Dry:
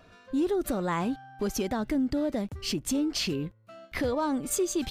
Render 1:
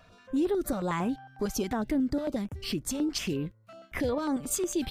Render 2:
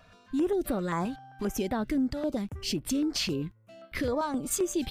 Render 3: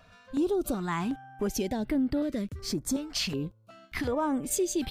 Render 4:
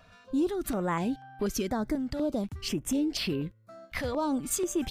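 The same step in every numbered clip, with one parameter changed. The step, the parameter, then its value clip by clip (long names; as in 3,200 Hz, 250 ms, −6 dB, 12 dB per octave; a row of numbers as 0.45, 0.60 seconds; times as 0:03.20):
notch on a step sequencer, speed: 11, 7.6, 2.7, 4.1 Hertz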